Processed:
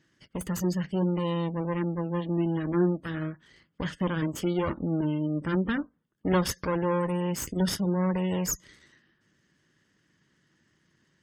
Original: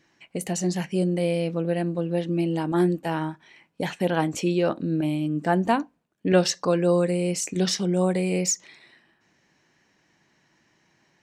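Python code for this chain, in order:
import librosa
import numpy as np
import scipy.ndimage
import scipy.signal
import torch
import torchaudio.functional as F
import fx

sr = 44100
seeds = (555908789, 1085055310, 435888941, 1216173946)

y = fx.lower_of_two(x, sr, delay_ms=0.62)
y = fx.spec_gate(y, sr, threshold_db=-30, keep='strong')
y = scipy.signal.sosfilt(scipy.signal.butter(2, 50.0, 'highpass', fs=sr, output='sos'), y)
y = fx.low_shelf(y, sr, hz=230.0, db=6.5)
y = fx.notch(y, sr, hz=700.0, q=12.0)
y = F.gain(torch.from_numpy(y), -4.0).numpy()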